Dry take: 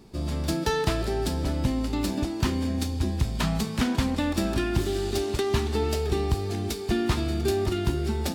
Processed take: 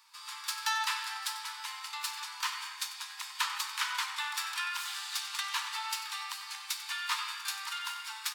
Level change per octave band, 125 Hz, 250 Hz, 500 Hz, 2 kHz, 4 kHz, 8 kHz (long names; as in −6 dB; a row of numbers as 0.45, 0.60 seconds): below −40 dB, below −40 dB, below −40 dB, +1.0 dB, +0.5 dB, +0.5 dB